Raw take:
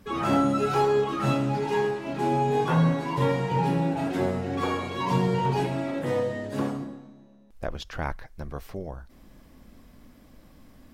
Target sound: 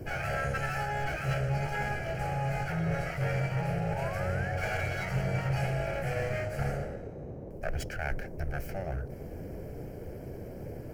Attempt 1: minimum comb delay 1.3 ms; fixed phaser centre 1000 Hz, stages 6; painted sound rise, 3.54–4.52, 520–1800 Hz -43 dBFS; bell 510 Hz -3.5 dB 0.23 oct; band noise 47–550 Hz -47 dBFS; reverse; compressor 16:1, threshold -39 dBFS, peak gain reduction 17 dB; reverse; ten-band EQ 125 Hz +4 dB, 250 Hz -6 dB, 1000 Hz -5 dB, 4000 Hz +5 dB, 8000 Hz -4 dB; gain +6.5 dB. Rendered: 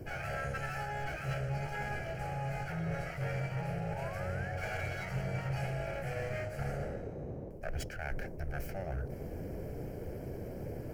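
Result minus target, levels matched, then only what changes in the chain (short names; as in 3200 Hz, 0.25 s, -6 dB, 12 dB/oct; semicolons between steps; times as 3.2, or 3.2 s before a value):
compressor: peak gain reduction +5.5 dB
change: compressor 16:1, threshold -33 dBFS, peak gain reduction 11.5 dB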